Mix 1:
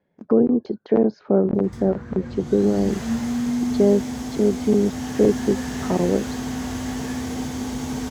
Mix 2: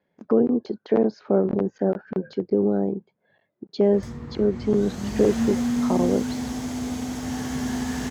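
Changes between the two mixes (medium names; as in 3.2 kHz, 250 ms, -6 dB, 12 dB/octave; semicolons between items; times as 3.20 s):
speech: add tilt EQ +1.5 dB/octave; background: entry +2.30 s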